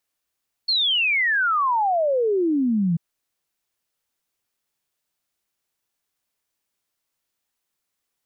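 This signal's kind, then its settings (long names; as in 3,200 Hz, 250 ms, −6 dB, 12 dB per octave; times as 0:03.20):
exponential sine sweep 4,400 Hz → 160 Hz 2.29 s −17.5 dBFS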